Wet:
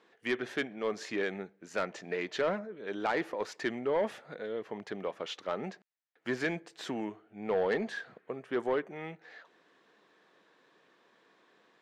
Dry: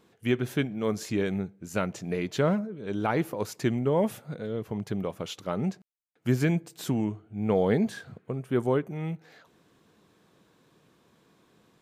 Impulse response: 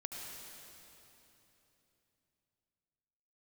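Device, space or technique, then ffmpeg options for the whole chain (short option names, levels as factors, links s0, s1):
intercom: -af "highpass=410,lowpass=4500,equalizer=f=1800:t=o:w=0.27:g=7.5,asoftclip=type=tanh:threshold=0.0794"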